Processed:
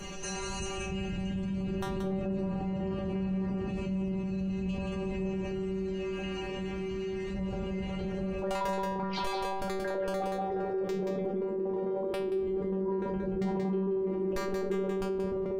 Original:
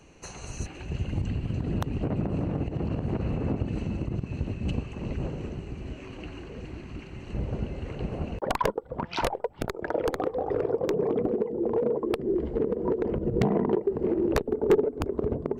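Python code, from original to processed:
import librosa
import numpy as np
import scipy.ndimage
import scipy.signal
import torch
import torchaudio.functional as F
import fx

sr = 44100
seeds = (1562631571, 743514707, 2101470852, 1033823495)

y = fx.low_shelf(x, sr, hz=110.0, db=6.0)
y = fx.stiff_resonator(y, sr, f0_hz=190.0, decay_s=0.66, stiffness=0.002)
y = y + 10.0 ** (-6.0 / 20.0) * np.pad(y, (int(179 * sr / 1000.0), 0))[:len(y)]
y = fx.env_flatten(y, sr, amount_pct=70)
y = F.gain(torch.from_numpy(y), 4.0).numpy()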